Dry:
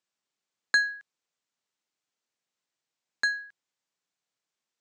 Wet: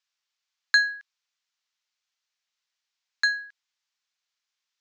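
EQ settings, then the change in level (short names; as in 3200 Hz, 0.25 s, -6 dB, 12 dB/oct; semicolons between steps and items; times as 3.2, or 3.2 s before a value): HPF 1000 Hz 12 dB/oct; LPF 6000 Hz 24 dB/oct; tilt +2 dB/oct; +2.0 dB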